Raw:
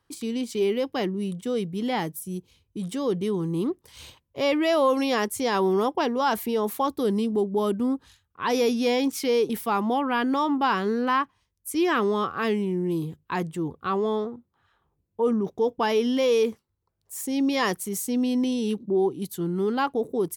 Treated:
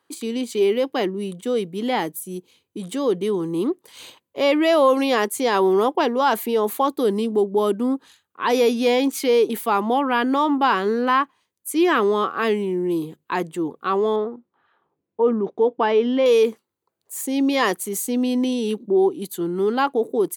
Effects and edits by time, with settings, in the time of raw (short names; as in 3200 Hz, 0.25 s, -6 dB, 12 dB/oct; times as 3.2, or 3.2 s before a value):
14.16–16.26 Bessel low-pass 2400 Hz
whole clip: Chebyshev high-pass 300 Hz, order 2; notch 5400 Hz, Q 6.3; gain +5.5 dB